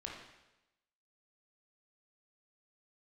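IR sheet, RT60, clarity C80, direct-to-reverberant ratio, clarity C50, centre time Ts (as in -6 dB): 0.95 s, 5.0 dB, -2.0 dB, 1.5 dB, 53 ms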